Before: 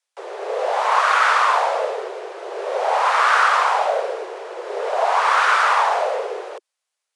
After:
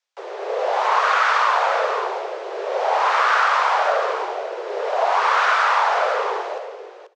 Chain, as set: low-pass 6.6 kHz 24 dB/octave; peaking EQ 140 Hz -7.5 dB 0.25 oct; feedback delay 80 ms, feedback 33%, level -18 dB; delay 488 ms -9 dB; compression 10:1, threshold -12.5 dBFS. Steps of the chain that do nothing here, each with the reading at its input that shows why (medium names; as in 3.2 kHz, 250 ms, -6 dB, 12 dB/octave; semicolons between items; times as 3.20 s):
peaking EQ 140 Hz: input has nothing below 320 Hz